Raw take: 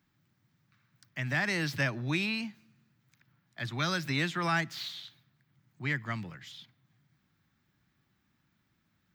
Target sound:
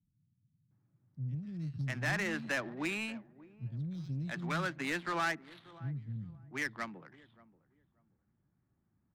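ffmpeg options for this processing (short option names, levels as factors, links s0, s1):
-filter_complex "[0:a]acrossover=split=220|4400[s0][s1][s2];[s2]adelay=120[s3];[s1]adelay=710[s4];[s0][s4][s3]amix=inputs=3:normalize=0,asoftclip=type=tanh:threshold=0.0562,asplit=2[s5][s6];[s6]adelay=582,lowpass=f=3200:p=1,volume=0.126,asplit=2[s7][s8];[s8]adelay=582,lowpass=f=3200:p=1,volume=0.24[s9];[s7][s9]amix=inputs=2:normalize=0[s10];[s5][s10]amix=inputs=2:normalize=0,adynamicsmooth=sensitivity=6:basefreq=800"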